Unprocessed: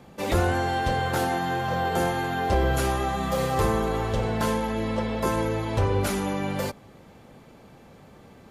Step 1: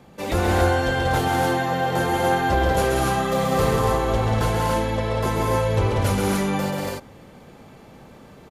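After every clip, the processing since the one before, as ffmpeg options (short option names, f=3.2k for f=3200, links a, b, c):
-af "aecho=1:1:134.1|189.5|244.9|282.8:0.631|0.631|0.562|0.794"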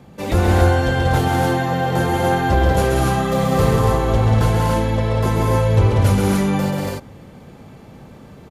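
-af "equalizer=f=100:w=0.44:g=7,volume=1dB"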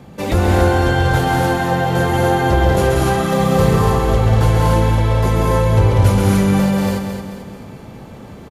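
-filter_complex "[0:a]asplit=2[a][b];[b]acompressor=threshold=-24dB:ratio=6,volume=-1dB[c];[a][c]amix=inputs=2:normalize=0,aecho=1:1:220|440|660|880|1100:0.447|0.205|0.0945|0.0435|0.02,volume=-1dB"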